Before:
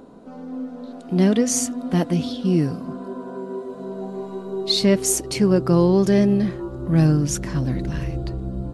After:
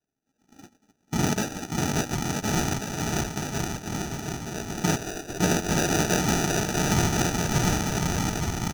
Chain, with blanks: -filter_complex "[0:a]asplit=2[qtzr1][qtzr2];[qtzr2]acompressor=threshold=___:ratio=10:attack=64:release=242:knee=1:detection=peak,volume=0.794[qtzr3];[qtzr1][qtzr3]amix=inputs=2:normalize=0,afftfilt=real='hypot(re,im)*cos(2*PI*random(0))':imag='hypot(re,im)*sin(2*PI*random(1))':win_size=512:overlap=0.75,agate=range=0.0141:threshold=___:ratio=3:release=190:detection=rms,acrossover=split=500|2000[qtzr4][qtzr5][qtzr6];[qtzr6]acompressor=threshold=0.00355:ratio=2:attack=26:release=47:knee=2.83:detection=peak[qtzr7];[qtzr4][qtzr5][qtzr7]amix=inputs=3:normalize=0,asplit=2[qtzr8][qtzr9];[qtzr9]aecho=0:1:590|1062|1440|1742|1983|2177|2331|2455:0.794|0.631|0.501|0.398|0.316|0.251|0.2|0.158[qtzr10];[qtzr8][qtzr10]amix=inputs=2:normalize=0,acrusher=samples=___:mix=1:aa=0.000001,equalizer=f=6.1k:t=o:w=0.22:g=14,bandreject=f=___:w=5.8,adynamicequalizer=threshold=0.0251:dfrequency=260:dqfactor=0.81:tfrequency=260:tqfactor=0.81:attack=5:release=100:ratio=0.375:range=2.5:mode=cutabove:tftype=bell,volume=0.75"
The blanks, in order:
0.0316, 0.0631, 41, 530